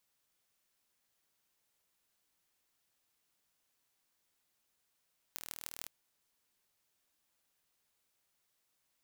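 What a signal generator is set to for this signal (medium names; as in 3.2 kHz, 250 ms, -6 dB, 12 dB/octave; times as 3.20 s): pulse train 39.5 per s, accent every 6, -12 dBFS 0.53 s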